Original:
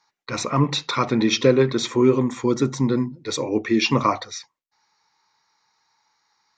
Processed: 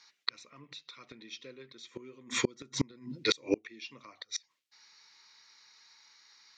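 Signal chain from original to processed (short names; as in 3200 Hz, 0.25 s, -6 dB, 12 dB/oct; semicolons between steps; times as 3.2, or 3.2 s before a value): weighting filter D; flipped gate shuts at -13 dBFS, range -33 dB; bell 820 Hz -7 dB 0.39 oct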